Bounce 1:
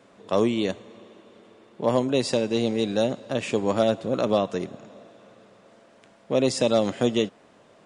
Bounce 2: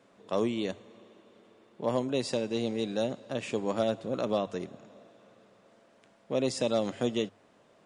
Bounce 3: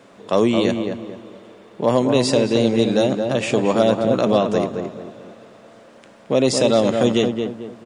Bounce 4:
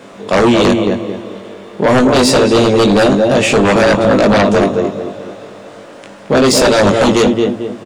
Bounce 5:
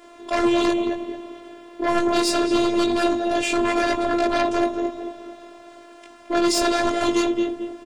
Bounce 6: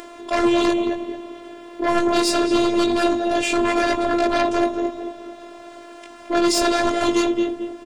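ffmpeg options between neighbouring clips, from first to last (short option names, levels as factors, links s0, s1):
-af "bandreject=f=50:t=h:w=6,bandreject=f=100:t=h:w=6,volume=0.447"
-filter_complex "[0:a]asplit=2[s0][s1];[s1]alimiter=level_in=1.12:limit=0.0631:level=0:latency=1,volume=0.891,volume=0.794[s2];[s0][s2]amix=inputs=2:normalize=0,asplit=2[s3][s4];[s4]adelay=221,lowpass=f=1700:p=1,volume=0.562,asplit=2[s5][s6];[s6]adelay=221,lowpass=f=1700:p=1,volume=0.36,asplit=2[s7][s8];[s8]adelay=221,lowpass=f=1700:p=1,volume=0.36,asplit=2[s9][s10];[s10]adelay=221,lowpass=f=1700:p=1,volume=0.36[s11];[s3][s5][s7][s9][s11]amix=inputs=5:normalize=0,volume=2.82"
-filter_complex "[0:a]asplit=2[s0][s1];[s1]adelay=20,volume=0.708[s2];[s0][s2]amix=inputs=2:normalize=0,aeval=exprs='0.794*sin(PI/2*3.16*val(0)/0.794)':c=same,volume=0.668"
-af "afftfilt=real='hypot(re,im)*cos(PI*b)':imag='0':win_size=512:overlap=0.75,volume=0.473"
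-af "acompressor=mode=upward:threshold=0.0224:ratio=2.5,volume=1.19"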